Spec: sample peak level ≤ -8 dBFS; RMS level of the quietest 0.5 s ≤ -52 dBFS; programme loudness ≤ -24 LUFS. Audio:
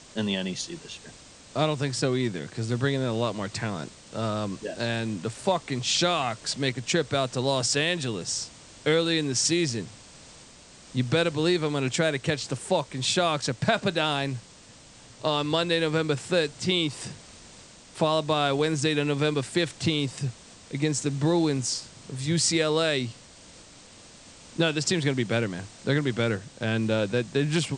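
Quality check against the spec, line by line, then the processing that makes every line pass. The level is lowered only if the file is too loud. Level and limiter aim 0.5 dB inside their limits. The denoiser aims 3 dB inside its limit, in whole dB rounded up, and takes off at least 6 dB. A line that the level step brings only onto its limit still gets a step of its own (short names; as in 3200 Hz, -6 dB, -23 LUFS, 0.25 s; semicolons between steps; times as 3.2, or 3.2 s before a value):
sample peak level -6.5 dBFS: fail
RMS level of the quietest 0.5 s -51 dBFS: fail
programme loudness -26.5 LUFS: OK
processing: denoiser 6 dB, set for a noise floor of -51 dBFS; limiter -8.5 dBFS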